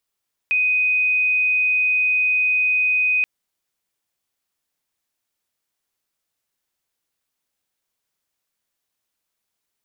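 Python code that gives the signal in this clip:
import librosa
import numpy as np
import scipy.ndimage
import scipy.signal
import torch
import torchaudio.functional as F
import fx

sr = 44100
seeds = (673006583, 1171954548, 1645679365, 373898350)

y = 10.0 ** (-15.5 / 20.0) * np.sin(2.0 * np.pi * (2500.0 * (np.arange(round(2.73 * sr)) / sr)))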